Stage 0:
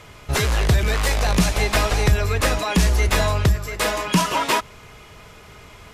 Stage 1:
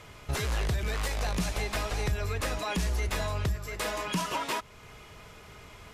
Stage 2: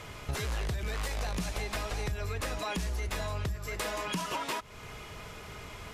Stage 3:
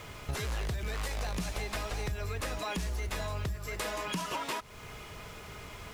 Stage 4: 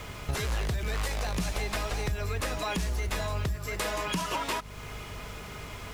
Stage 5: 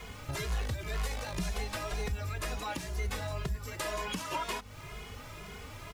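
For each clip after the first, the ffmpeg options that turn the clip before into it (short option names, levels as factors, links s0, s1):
-af "alimiter=limit=0.158:level=0:latency=1:release=372,volume=0.531"
-af "acompressor=threshold=0.0126:ratio=3,volume=1.68"
-af "acrusher=bits=8:mix=0:aa=0.5,volume=0.891"
-af "aeval=exprs='val(0)+0.00355*(sin(2*PI*50*n/s)+sin(2*PI*2*50*n/s)/2+sin(2*PI*3*50*n/s)/3+sin(2*PI*4*50*n/s)/4+sin(2*PI*5*50*n/s)/5)':c=same,volume=1.58"
-filter_complex "[0:a]asplit=2[s0][s1];[s1]adelay=2.4,afreqshift=2[s2];[s0][s2]amix=inputs=2:normalize=1,volume=0.841"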